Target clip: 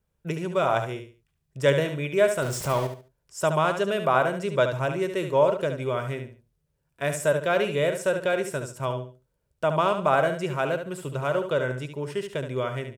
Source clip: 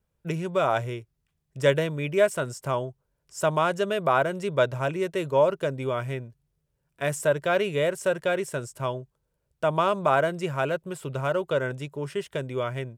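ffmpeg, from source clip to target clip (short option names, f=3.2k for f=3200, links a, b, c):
-filter_complex "[0:a]asettb=1/sr,asplit=3[a][b][c];[a]atrim=end=2.424[d];[b]atrim=start=2.42:end=2.87,asetpts=PTS-STARTPTS,afade=t=in:d=0.004:c=qsin,afade=t=out:st=0.446:d=0.004:c=qsin,aeval=exprs='val(0)+0.5*0.0299*sgn(val(0))':c=same[e];[c]atrim=start=2.866[f];[d][e]acrossfade=d=0.004:c1=hsin:c2=qsin[g];[g][f]acrossfade=d=0.004:c1=qsin:c2=hsin,aecho=1:1:71|142|213:0.398|0.107|0.029"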